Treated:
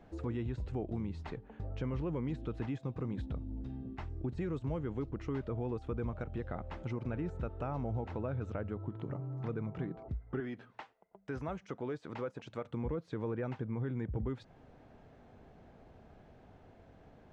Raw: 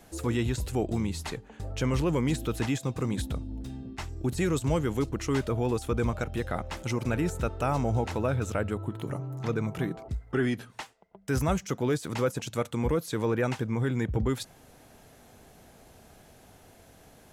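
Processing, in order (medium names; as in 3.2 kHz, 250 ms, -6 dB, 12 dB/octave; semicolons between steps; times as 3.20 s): 10.40–12.65 s: bass shelf 230 Hz -11.5 dB; compression 2:1, threshold -36 dBFS, peak gain reduction 8 dB; tape spacing loss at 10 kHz 36 dB; trim -1.5 dB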